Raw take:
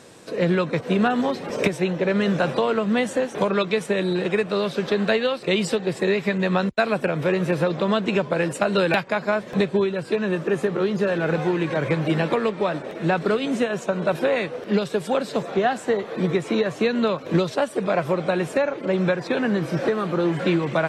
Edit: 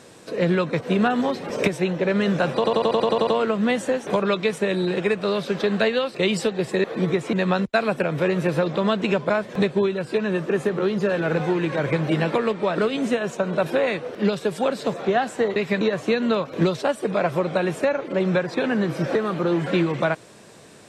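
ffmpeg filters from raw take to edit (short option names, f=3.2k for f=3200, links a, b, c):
-filter_complex "[0:a]asplit=15[a][b][c][d][e][f][g][h][i][j][k][l][m][n][o];[a]atrim=end=2.642[p];[b]atrim=start=2.548:end=2.642[q];[c]atrim=start=2.548:end=2.642[r];[d]atrim=start=2.548:end=2.642[s];[e]atrim=start=2.548:end=2.642[t];[f]atrim=start=2.548:end=2.642[u];[g]atrim=start=2.548:end=2.642[v];[h]atrim=start=2.548:end=2.642[w];[i]atrim=start=2.548:end=6.122[x];[j]atrim=start=16.048:end=16.542[y];[k]atrim=start=6.368:end=8.342[z];[l]atrim=start=9.278:end=12.762[aa];[m]atrim=start=13.268:end=16.052[ab];[n]atrim=start=6.118:end=6.372[ac];[o]atrim=start=16.538[ad];[p][q]acrossfade=d=0.004:c1=hsin:c2=hsin[ae];[ae][r]acrossfade=d=0.004:c1=hsin:c2=hsin[af];[af][s]acrossfade=d=0.004:c1=hsin:c2=hsin[ag];[ag][t]acrossfade=d=0.004:c1=hsin:c2=hsin[ah];[ah][u]acrossfade=d=0.004:c1=hsin:c2=hsin[ai];[ai][v]acrossfade=d=0.004:c1=hsin:c2=hsin[aj];[aj][w]acrossfade=d=0.004:c1=hsin:c2=hsin[ak];[ak][x]acrossfade=d=0.004:c1=hsin:c2=hsin[al];[al][y]acrossfade=d=0.004:c1=hsin:c2=hsin[am];[am][z]acrossfade=d=0.004:c1=hsin:c2=hsin[an];[an][aa]acrossfade=d=0.004:c1=hsin:c2=hsin[ao];[ao][ab]acrossfade=d=0.004:c1=hsin:c2=hsin[ap];[ap][ac]acrossfade=d=0.004:c1=hsin:c2=hsin[aq];[aq][ad]acrossfade=d=0.004:c1=hsin:c2=hsin"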